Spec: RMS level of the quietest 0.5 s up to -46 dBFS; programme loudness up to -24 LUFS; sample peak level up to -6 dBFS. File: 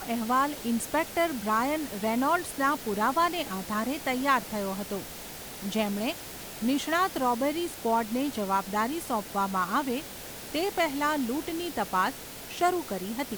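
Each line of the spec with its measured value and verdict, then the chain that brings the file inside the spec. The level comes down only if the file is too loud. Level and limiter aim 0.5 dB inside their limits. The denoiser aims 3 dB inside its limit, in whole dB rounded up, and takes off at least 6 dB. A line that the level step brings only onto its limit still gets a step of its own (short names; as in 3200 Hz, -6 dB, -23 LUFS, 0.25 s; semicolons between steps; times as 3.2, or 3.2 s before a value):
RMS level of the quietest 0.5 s -41 dBFS: fail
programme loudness -28.5 LUFS: OK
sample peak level -12.0 dBFS: OK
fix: denoiser 8 dB, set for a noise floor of -41 dBFS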